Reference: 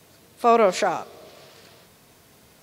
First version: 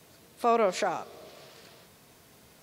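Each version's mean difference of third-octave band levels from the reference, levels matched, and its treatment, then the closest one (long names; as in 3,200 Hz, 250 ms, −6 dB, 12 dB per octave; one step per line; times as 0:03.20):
3.0 dB: mains-hum notches 50/100 Hz
in parallel at +0.5 dB: downward compressor, threshold −28 dBFS, peak gain reduction 15 dB
on the sum: level −9 dB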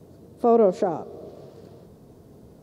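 8.5 dB: drawn EQ curve 420 Hz 0 dB, 2,300 Hz −26 dB, 4,300 Hz −21 dB
in parallel at +1 dB: downward compressor, threshold −37 dBFS, peak gain reduction 18.5 dB
on the sum: level +2.5 dB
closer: first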